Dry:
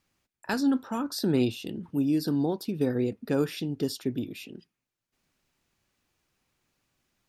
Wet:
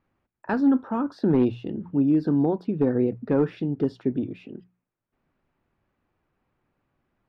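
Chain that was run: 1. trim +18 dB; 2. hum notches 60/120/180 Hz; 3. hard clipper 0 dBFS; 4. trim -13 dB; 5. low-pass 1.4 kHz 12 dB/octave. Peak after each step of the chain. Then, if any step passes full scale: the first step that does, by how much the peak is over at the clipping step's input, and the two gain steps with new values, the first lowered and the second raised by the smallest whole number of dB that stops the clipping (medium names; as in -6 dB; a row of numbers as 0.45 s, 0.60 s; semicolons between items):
+4.5 dBFS, +4.5 dBFS, 0.0 dBFS, -13.0 dBFS, -12.5 dBFS; step 1, 4.5 dB; step 1 +13 dB, step 4 -8 dB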